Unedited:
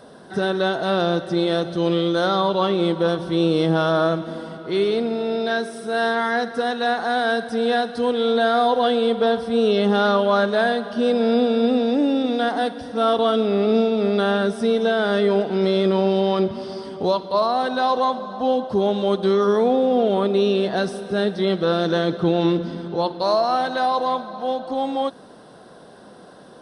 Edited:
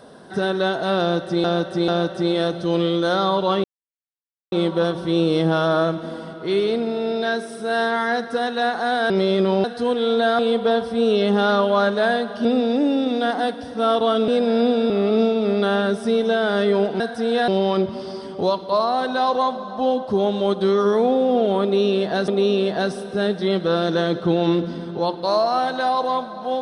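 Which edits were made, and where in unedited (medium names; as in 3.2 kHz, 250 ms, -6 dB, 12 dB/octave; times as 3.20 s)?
1.00–1.44 s: loop, 3 plays
2.76 s: insert silence 0.88 s
7.34–7.82 s: swap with 15.56–16.10 s
8.57–8.95 s: delete
11.01–11.63 s: move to 13.46 s
20.25–20.90 s: loop, 2 plays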